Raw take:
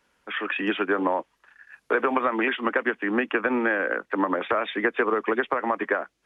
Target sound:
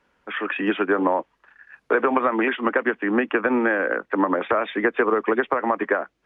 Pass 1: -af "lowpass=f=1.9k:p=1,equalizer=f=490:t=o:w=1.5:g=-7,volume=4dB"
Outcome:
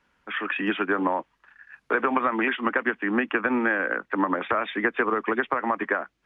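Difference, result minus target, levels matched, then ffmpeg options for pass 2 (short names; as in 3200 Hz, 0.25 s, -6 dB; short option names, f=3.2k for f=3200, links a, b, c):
500 Hz band -3.0 dB
-af "lowpass=f=1.9k:p=1,volume=4dB"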